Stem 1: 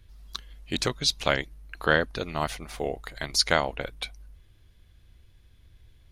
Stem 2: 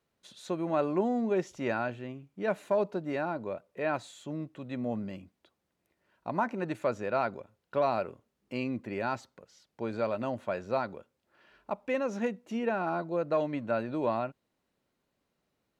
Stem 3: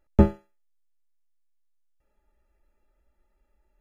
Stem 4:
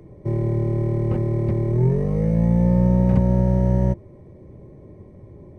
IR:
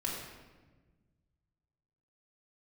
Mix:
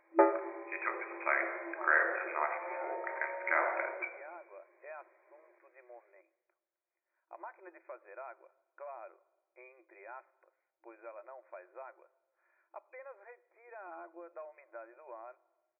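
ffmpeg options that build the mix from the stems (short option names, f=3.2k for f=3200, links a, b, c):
-filter_complex "[0:a]volume=-2dB,asplit=2[a][b];[b]volume=-7.5dB[c];[1:a]acompressor=threshold=-32dB:ratio=3,adelay=1050,volume=-11dB,asplit=2[d][e];[e]volume=-22dB[f];[2:a]volume=2dB,asplit=2[g][h];[h]volume=-8.5dB[i];[3:a]volume=-4dB,asplit=2[j][k];[k]volume=-17.5dB[l];[a][j]amix=inputs=2:normalize=0,highpass=960,alimiter=limit=-17dB:level=0:latency=1:release=89,volume=0dB[m];[4:a]atrim=start_sample=2205[n];[c][f][i][l]amix=inputs=4:normalize=0[o];[o][n]afir=irnorm=-1:irlink=0[p];[d][g][m][p]amix=inputs=4:normalize=0,equalizer=f=430:w=4.2:g=-14.5,afftfilt=real='re*between(b*sr/4096,330,2500)':imag='im*between(b*sr/4096,330,2500)':win_size=4096:overlap=0.75"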